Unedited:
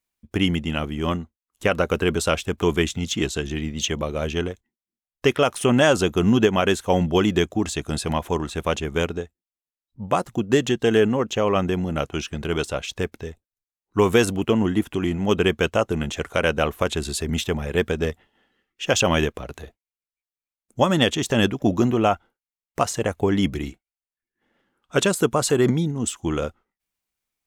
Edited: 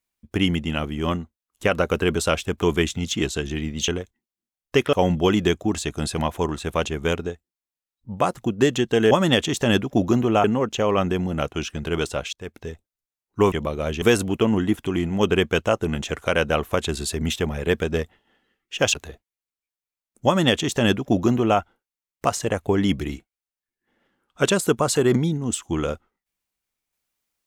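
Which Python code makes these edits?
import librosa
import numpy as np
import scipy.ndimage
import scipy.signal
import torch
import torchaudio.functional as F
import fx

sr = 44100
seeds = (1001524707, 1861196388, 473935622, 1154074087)

y = fx.edit(x, sr, fx.move(start_s=3.88, length_s=0.5, to_s=14.1),
    fx.cut(start_s=5.43, length_s=1.41),
    fx.fade_in_span(start_s=12.91, length_s=0.35),
    fx.cut(start_s=19.02, length_s=0.46),
    fx.duplicate(start_s=20.8, length_s=1.33, to_s=11.02), tone=tone)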